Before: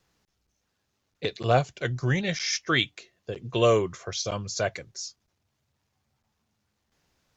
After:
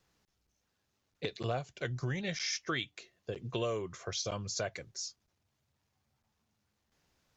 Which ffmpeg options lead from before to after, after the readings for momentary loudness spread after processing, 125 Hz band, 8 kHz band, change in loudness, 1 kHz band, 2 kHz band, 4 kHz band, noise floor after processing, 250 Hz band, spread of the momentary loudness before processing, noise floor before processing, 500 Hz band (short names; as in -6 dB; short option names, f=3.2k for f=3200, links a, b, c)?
8 LU, -10.0 dB, n/a, -10.5 dB, -12.5 dB, -10.0 dB, -8.5 dB, -81 dBFS, -9.5 dB, 15 LU, -77 dBFS, -11.5 dB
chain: -af "acompressor=threshold=-29dB:ratio=4,volume=-3.5dB"